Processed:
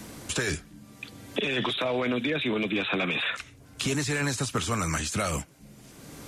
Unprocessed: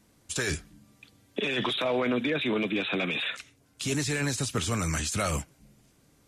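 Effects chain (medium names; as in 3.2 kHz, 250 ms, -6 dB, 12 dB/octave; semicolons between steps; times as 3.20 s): 2.72–4.97 s: dynamic bell 1.1 kHz, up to +5 dB, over -48 dBFS, Q 1.2; three bands compressed up and down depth 70%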